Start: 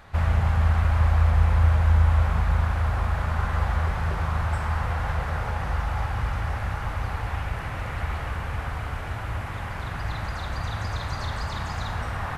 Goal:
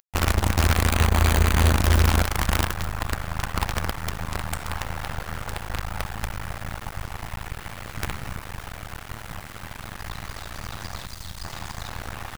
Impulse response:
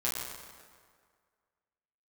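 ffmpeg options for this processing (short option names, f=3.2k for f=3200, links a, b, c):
-filter_complex "[0:a]highshelf=f=4.5k:g=11,aecho=1:1:71:0.188,aeval=exprs='sgn(val(0))*max(abs(val(0))-0.0119,0)':c=same,acompressor=mode=upward:threshold=-38dB:ratio=2.5,asettb=1/sr,asplit=3[a][b][c];[a]atrim=end=7.974[d];[b]atrim=start=7.97:end=8.37,asetpts=PTS-STARTPTS,afade=t=in:d=0.004:c=qsin,afade=t=out:st=0.396:d=0.004:c=qsin,equalizer=f=130:w=1.6:g=10[e];[c]atrim=start=8.366[f];[d][e]acrossfade=d=0.004:c1=hsin:c2=qsin[g];[g][f]acrossfade=d=0.004:c1=qsin:c2=hsin,asettb=1/sr,asplit=3[h][i][j];[h]atrim=end=11.054[k];[i]atrim=start=11.05:end=11.45,asetpts=PTS-STARTPTS,afade=t=in:d=0.004:c=qsin,afade=t=out:st=0.396:d=0.004:c=qsin,acrossover=split=130|3000[l][m][n];[m]acompressor=threshold=-45dB:ratio=3[o];[l][o][n]amix=inputs=3:normalize=0[p];[j]atrim=start=11.446[q];[k][p]acrossfade=d=0.004:c1=hsin:c2=qsin[r];[r][q]acrossfade=d=0.004:c1=qsin:c2=hsin,acrusher=bits=4:dc=4:mix=0:aa=0.000001,asettb=1/sr,asplit=3[s][t][u];[s]atrim=end=0.914[v];[t]atrim=start=0.91:end=1.77,asetpts=PTS-STARTPTS,afade=t=in:d=0.004:c=qsin,afade=t=out:st=0.856:d=0.004:c=qsin,bandreject=f=5.3k:w=7.4[w];[u]atrim=start=1.766[x];[v][w]acrossfade=d=0.004:c1=hsin:c2=qsin[y];[y][x]acrossfade=d=0.004:c1=qsin:c2=hsin"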